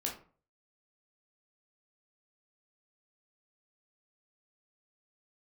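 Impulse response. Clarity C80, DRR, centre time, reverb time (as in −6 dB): 14.0 dB, −1.5 dB, 23 ms, 0.45 s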